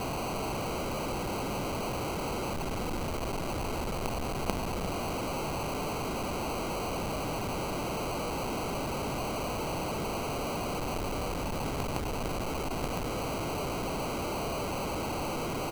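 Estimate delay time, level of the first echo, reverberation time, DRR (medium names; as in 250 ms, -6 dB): 350 ms, -11.5 dB, no reverb, no reverb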